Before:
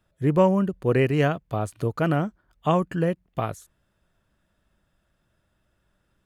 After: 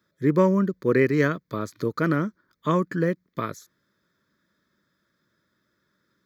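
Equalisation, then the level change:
high-pass filter 230 Hz 12 dB per octave
parametric band 1,500 Hz −3.5 dB 0.37 octaves
phaser with its sweep stopped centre 2,800 Hz, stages 6
+6.0 dB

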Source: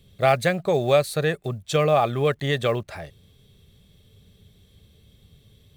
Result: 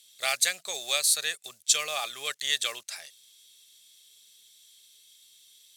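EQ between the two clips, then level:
resonant band-pass 6,800 Hz, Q 1.2
spectral tilt +3 dB per octave
+6.5 dB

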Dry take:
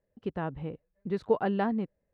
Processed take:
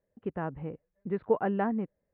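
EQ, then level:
low-pass filter 2,400 Hz 24 dB per octave
high-frequency loss of the air 68 metres
low-shelf EQ 82 Hz −6 dB
0.0 dB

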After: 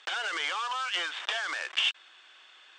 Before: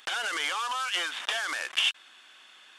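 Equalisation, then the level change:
Butterworth high-pass 310 Hz 36 dB per octave
elliptic low-pass filter 8,700 Hz, stop band 40 dB
high-frequency loss of the air 61 metres
0.0 dB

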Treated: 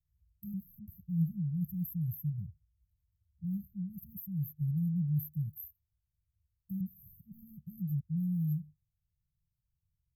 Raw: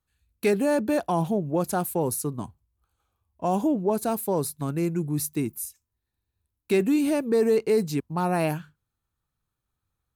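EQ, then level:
linear-phase brick-wall band-stop 190–12,000 Hz
high-shelf EQ 12,000 Hz −10 dB
0.0 dB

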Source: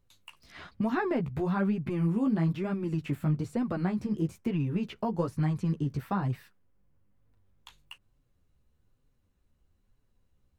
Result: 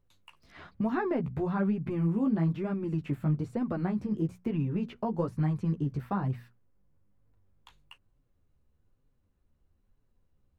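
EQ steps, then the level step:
high-shelf EQ 2,400 Hz −9.5 dB
mains-hum notches 60/120/180/240 Hz
0.0 dB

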